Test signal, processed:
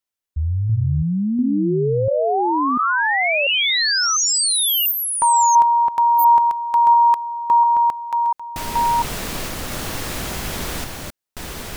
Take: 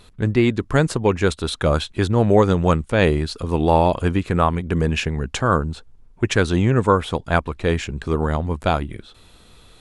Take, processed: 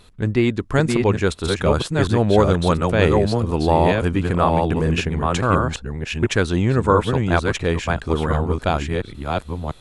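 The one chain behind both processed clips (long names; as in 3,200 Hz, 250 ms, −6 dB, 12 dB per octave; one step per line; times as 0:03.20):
delay that plays each chunk backwards 694 ms, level −3 dB
level −1 dB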